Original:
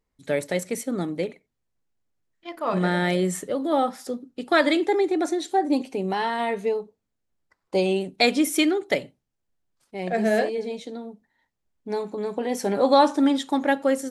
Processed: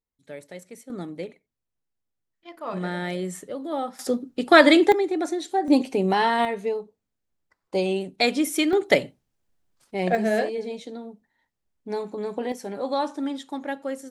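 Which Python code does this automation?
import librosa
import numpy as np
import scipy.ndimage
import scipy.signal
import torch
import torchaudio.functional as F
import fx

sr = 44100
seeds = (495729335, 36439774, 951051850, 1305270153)

y = fx.gain(x, sr, db=fx.steps((0.0, -14.5), (0.9, -6.5), (3.99, 6.0), (4.92, -2.0), (5.68, 4.5), (6.45, -2.0), (8.73, 5.0), (10.15, -1.5), (12.52, -9.0)))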